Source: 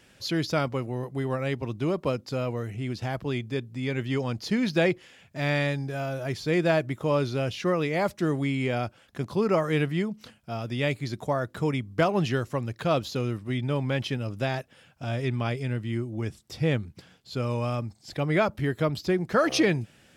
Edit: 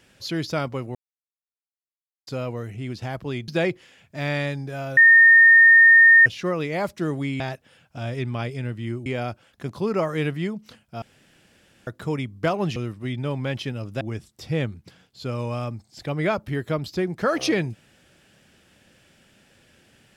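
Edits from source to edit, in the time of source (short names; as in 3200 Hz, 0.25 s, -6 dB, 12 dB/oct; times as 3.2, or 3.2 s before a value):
0.95–2.27 mute
3.48–4.69 cut
6.18–7.47 bleep 1830 Hz -8.5 dBFS
10.57–11.42 room tone
12.31–13.21 cut
14.46–16.12 move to 8.61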